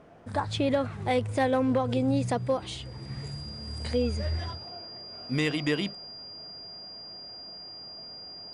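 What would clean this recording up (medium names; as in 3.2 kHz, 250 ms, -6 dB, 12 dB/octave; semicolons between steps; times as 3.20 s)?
clip repair -17 dBFS; band-stop 4.8 kHz, Q 30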